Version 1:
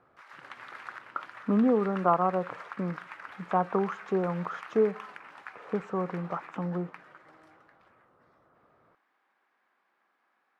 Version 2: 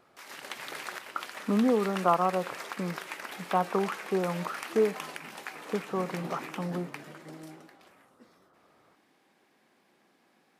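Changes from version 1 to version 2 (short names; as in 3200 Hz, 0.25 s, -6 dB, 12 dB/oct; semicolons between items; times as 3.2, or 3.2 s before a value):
background: remove band-pass 1300 Hz, Q 1.9; master: add low shelf 160 Hz -4 dB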